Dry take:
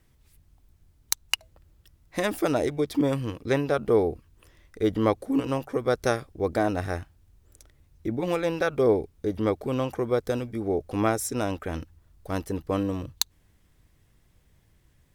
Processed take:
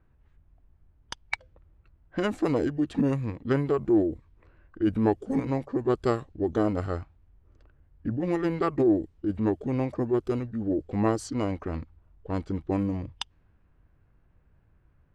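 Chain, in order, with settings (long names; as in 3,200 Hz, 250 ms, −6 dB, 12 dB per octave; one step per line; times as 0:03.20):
low-pass that shuts in the quiet parts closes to 2,500 Hz, open at −21.5 dBFS
high-shelf EQ 3,700 Hz −10 dB
formants moved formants −4 semitones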